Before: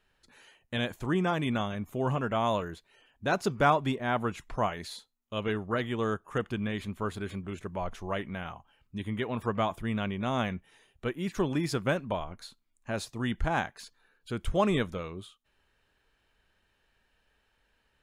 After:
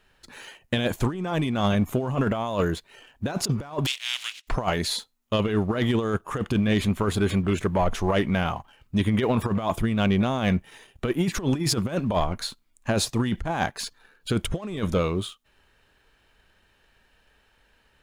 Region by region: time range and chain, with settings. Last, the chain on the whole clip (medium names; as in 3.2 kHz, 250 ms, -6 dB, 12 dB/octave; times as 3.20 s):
3.85–4.47 s: spectral contrast reduction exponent 0.33 + gate -49 dBFS, range -7 dB + ladder band-pass 3.5 kHz, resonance 40%
whole clip: dynamic bell 1.7 kHz, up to -4 dB, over -45 dBFS, Q 1.1; compressor with a negative ratio -33 dBFS, ratio -0.5; waveshaping leveller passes 1; trim +7.5 dB